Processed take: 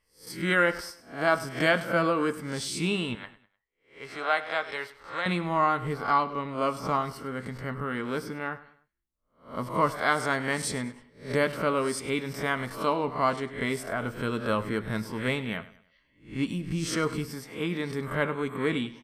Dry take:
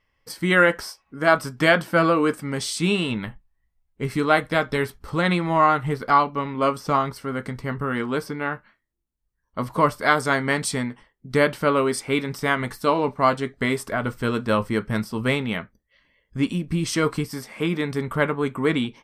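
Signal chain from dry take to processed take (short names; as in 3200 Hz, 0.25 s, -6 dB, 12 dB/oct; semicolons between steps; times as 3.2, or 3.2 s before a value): spectral swells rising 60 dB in 0.37 s; 3.15–5.26 three-band isolator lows -20 dB, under 510 Hz, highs -14 dB, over 6900 Hz; feedback echo 0.101 s, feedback 38%, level -17 dB; gain -7 dB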